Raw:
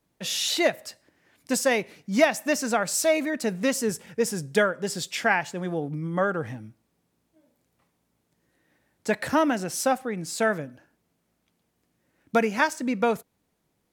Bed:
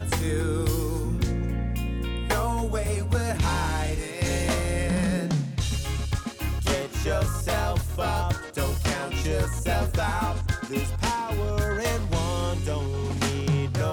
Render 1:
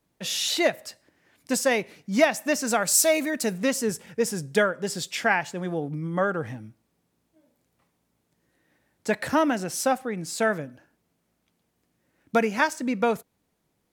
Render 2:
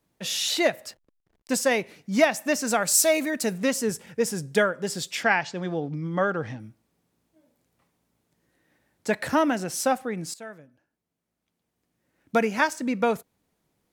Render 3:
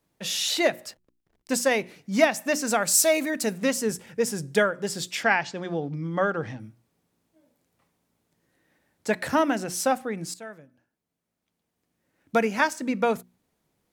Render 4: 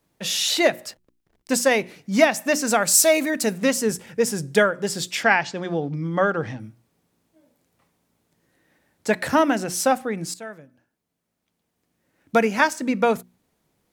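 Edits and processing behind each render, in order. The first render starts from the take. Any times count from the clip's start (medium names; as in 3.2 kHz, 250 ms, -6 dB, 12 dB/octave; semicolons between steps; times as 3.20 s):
2.67–3.58 s: treble shelf 5.5 kHz +10 dB
0.88–1.62 s: hysteresis with a dead band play -49.5 dBFS; 5.23–6.60 s: resonant low-pass 5 kHz, resonance Q 1.8; 10.34–12.43 s: fade in quadratic, from -17 dB
hum notches 60/120/180/240/300/360 Hz
trim +4 dB; peak limiter -3 dBFS, peak gain reduction 2 dB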